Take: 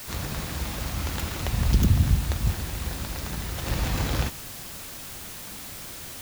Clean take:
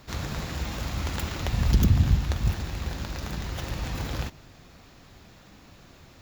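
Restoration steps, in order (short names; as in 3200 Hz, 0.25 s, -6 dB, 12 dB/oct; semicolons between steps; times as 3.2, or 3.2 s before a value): denoiser 12 dB, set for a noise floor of -39 dBFS; gain correction -5 dB, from 3.66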